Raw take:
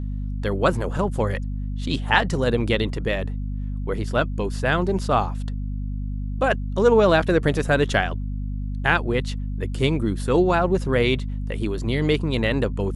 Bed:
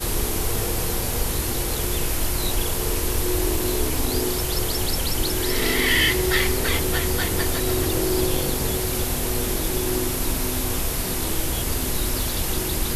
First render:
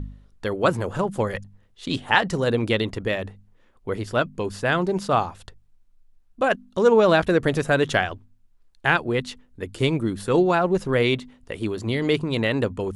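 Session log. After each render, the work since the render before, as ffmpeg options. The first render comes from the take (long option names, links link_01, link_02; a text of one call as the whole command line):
ffmpeg -i in.wav -af "bandreject=frequency=50:width_type=h:width=4,bandreject=frequency=100:width_type=h:width=4,bandreject=frequency=150:width_type=h:width=4,bandreject=frequency=200:width_type=h:width=4,bandreject=frequency=250:width_type=h:width=4" out.wav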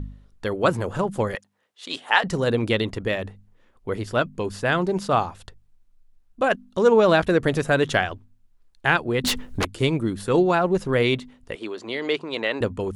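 ffmpeg -i in.wav -filter_complex "[0:a]asettb=1/sr,asplit=3[link_01][link_02][link_03];[link_01]atrim=end=1.354[link_04];[link_02]atrim=start=1.35:end=2.24,asetpts=PTS-STARTPTS,afade=type=in:duration=0.004:curve=qsin,afade=type=out:start_time=0.886:duration=0.004:curve=qsin,highpass=530[link_05];[link_03]atrim=start=2.236[link_06];[link_04][link_05]acrossfade=duration=0.004:curve1=hsin:curve2=qsin[link_07];[link_07][link_06]acrossfade=duration=0.004:curve1=qsin:curve2=hsin,asettb=1/sr,asplit=3[link_08][link_09][link_10];[link_08]atrim=end=9.244[link_11];[link_09]atrim=start=9.24:end=9.65,asetpts=PTS-STARTPTS,afade=type=in:duration=0.004:curve=qsin,afade=type=out:start_time=0.406:duration=0.004:curve=qsin,aeval=exprs='0.126*sin(PI/2*5.01*val(0)/0.126)':channel_layout=same[link_12];[link_10]atrim=start=9.646[link_13];[link_11][link_12]acrossfade=duration=0.004:curve1=hsin:curve2=qsin[link_14];[link_14][link_13]acrossfade=duration=0.004:curve1=qsin:curve2=hsin,asettb=1/sr,asplit=3[link_15][link_16][link_17];[link_15]atrim=end=11.554[link_18];[link_16]atrim=start=11.55:end=12.61,asetpts=PTS-STARTPTS,afade=type=in:duration=0.004:curve=qsin,afade=type=out:start_time=1.056:duration=0.004:curve=qsin,highpass=410,lowpass=5900[link_19];[link_17]atrim=start=12.606[link_20];[link_18][link_19]acrossfade=duration=0.004:curve1=hsin:curve2=qsin[link_21];[link_21][link_20]acrossfade=duration=0.004:curve1=qsin:curve2=hsin" out.wav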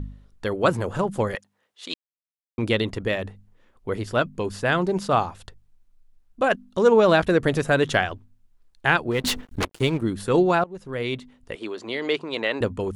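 ffmpeg -i in.wav -filter_complex "[0:a]asettb=1/sr,asplit=3[link_01][link_02][link_03];[link_01]atrim=end=9.114[link_04];[link_02]atrim=start=9.11:end=10.02,asetpts=PTS-STARTPTS,afade=type=in:duration=0.004:curve=qsin,afade=type=out:start_time=0.906:duration=0.004:curve=qsin,aeval=exprs='sgn(val(0))*max(abs(val(0))-0.0126,0)':channel_layout=same[link_05];[link_03]atrim=start=10.016[link_06];[link_04][link_05]acrossfade=duration=0.004:curve1=hsin:curve2=qsin[link_07];[link_07][link_06]acrossfade=duration=0.004:curve1=qsin:curve2=hsin,asplit=4[link_08][link_09][link_10][link_11];[link_08]atrim=end=1.94,asetpts=PTS-STARTPTS,afade=type=out:start_time=1.936:duration=0.004:curve=hsin[link_12];[link_09]atrim=start=1.94:end=2.58,asetpts=PTS-STARTPTS,volume=0[link_13];[link_10]atrim=start=2.58:end=10.64,asetpts=PTS-STARTPTS,afade=type=in:duration=0.004:curve=hsin,afade=type=out:start_time=8.056:duration=0.004:curve=hsin:silence=0.0707946[link_14];[link_11]atrim=start=10.64,asetpts=PTS-STARTPTS,afade=type=in:duration=1.04:silence=0.0707946[link_15];[link_12][link_13][link_14][link_15]concat=n=4:v=0:a=1" out.wav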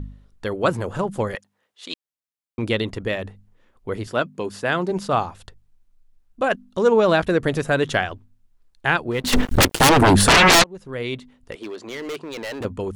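ffmpeg -i in.wav -filter_complex "[0:a]asettb=1/sr,asplit=3[link_01][link_02][link_03];[link_01]atrim=end=4.074[link_04];[link_02]atrim=start=4.07:end=4.91,asetpts=PTS-STARTPTS,afade=type=in:duration=0.004:curve=qsin,afade=type=out:start_time=0.836:duration=0.004:curve=qsin,highpass=150[link_05];[link_03]atrim=start=4.906[link_06];[link_04][link_05]acrossfade=duration=0.004:curve1=hsin:curve2=qsin[link_07];[link_07][link_06]acrossfade=duration=0.004:curve1=qsin:curve2=hsin,asplit=3[link_08][link_09][link_10];[link_08]afade=type=out:start_time=9.32:duration=0.02[link_11];[link_09]aeval=exprs='0.355*sin(PI/2*7.94*val(0)/0.355)':channel_layout=same,afade=type=in:start_time=9.32:duration=0.02,afade=type=out:start_time=10.62:duration=0.02[link_12];[link_10]afade=type=in:start_time=10.62:duration=0.02[link_13];[link_11][link_12][link_13]amix=inputs=3:normalize=0,asettb=1/sr,asplit=3[link_14][link_15][link_16];[link_14]atrim=end=11.524[link_17];[link_15]atrim=start=11.52:end=12.65,asetpts=PTS-STARTPTS,afade=type=in:duration=0.004:curve=qsin,afade=type=out:start_time=1.126:duration=0.004:curve=qsin,volume=27dB,asoftclip=hard,volume=-27dB[link_18];[link_16]atrim=start=12.646[link_19];[link_17][link_18]acrossfade=duration=0.004:curve1=hsin:curve2=qsin[link_20];[link_20][link_19]acrossfade=duration=0.004:curve1=qsin:curve2=hsin" out.wav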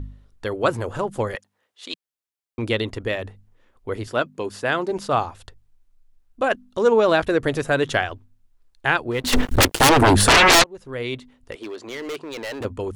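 ffmpeg -i in.wav -af "equalizer=frequency=180:width_type=o:width=0.32:gain=-11" out.wav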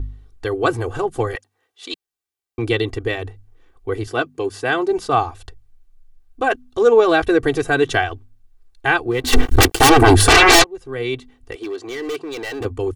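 ffmpeg -i in.wav -af "lowshelf=frequency=370:gain=3,aecho=1:1:2.6:0.86" out.wav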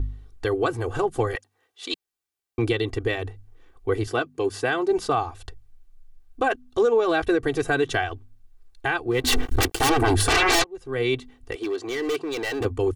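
ffmpeg -i in.wav -af "alimiter=limit=-12.5dB:level=0:latency=1:release=364" out.wav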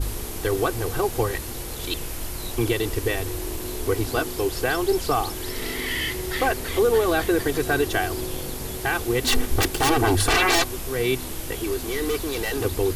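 ffmpeg -i in.wav -i bed.wav -filter_complex "[1:a]volume=-8dB[link_01];[0:a][link_01]amix=inputs=2:normalize=0" out.wav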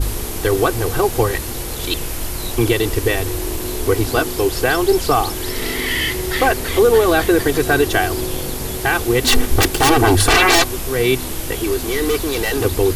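ffmpeg -i in.wav -af "volume=7dB" out.wav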